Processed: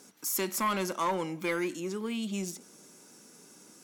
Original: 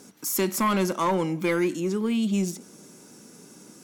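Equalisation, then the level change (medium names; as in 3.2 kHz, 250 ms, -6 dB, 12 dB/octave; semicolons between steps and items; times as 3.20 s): bass shelf 360 Hz -9 dB; -3.5 dB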